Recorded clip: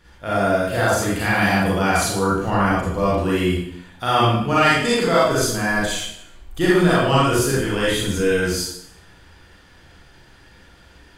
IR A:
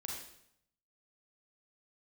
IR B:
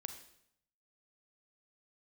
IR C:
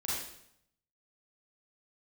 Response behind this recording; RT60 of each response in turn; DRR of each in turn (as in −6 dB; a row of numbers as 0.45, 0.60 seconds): C; 0.70, 0.70, 0.70 seconds; −2.0, 7.0, −8.0 decibels